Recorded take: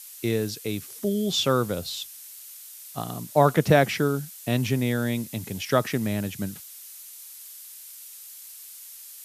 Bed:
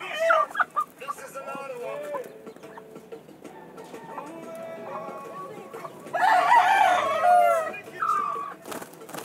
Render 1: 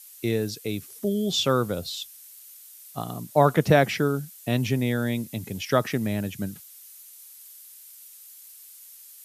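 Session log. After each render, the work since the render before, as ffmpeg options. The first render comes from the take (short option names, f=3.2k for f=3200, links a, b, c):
-af "afftdn=nr=6:nf=-44"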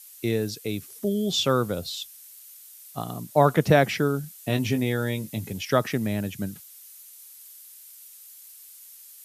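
-filter_complex "[0:a]asettb=1/sr,asplit=3[a][b][c];[a]atrim=end=2.404[d];[b]atrim=start=2.4:end=2.91,asetpts=PTS-STARTPTS,afade=t=in:d=0.004:c=qsin,afade=t=out:st=0.506:d=0.004:c=qsin,highpass=190[e];[c]atrim=start=2.906[f];[d][e]acrossfade=d=0.004:c1=hsin:c2=qsin[g];[g][f]acrossfade=d=0.004:c1=qsin:c2=hsin,asettb=1/sr,asplit=3[h][i][j];[h]atrim=end=4.224[k];[i]atrim=start=4.22:end=5.53,asetpts=PTS-STARTPTS,afade=t=in:d=0.004:c=qsin,afade=t=out:st=1.306:d=0.004:c=qsin,asplit=2[l][m];[m]adelay=19,volume=-7.5dB[n];[l][n]amix=inputs=2:normalize=0,atrim=end_sample=57771[o];[j]atrim=start=5.526[p];[k][o]acrossfade=d=0.004:c1=hsin:c2=qsin[q];[q][p]acrossfade=d=0.004:c1=qsin:c2=hsin"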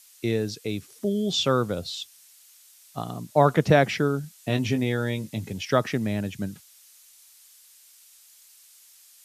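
-filter_complex "[0:a]acrossover=split=8500[a][b];[b]acompressor=threshold=-58dB:ratio=4:attack=1:release=60[c];[a][c]amix=inputs=2:normalize=0"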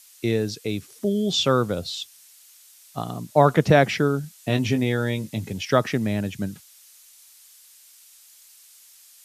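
-af "volume=2.5dB,alimiter=limit=-3dB:level=0:latency=1"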